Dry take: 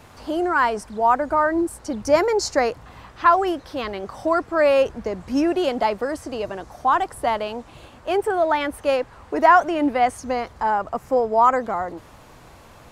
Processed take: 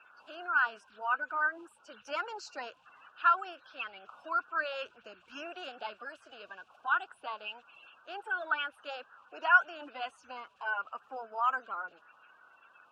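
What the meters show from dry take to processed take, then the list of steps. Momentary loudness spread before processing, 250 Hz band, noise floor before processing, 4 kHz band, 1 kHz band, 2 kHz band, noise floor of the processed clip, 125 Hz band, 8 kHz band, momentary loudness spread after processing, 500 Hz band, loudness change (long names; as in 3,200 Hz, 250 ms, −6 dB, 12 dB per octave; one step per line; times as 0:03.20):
12 LU, −30.0 dB, −47 dBFS, −10.5 dB, −13.5 dB, −3.5 dB, −65 dBFS, below −35 dB, below −20 dB, 20 LU, −24.0 dB, −12.0 dB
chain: spectral magnitudes quantised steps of 30 dB
pair of resonant band-passes 2,000 Hz, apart 0.87 octaves
level −1.5 dB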